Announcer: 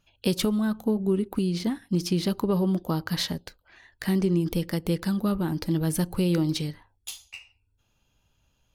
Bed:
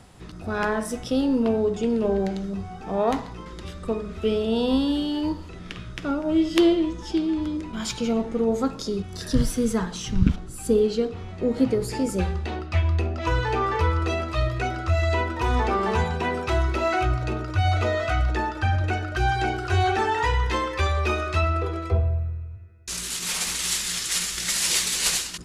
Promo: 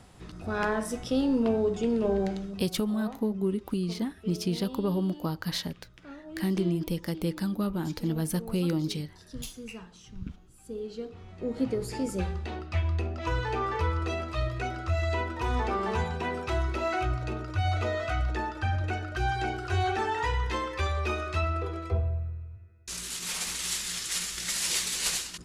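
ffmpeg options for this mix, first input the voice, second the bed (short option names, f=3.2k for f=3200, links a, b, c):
-filter_complex "[0:a]adelay=2350,volume=-4dB[a];[1:a]volume=10dB,afade=t=out:st=2.3:d=0.46:silence=0.158489,afade=t=in:st=10.69:d=1.2:silence=0.211349[b];[a][b]amix=inputs=2:normalize=0"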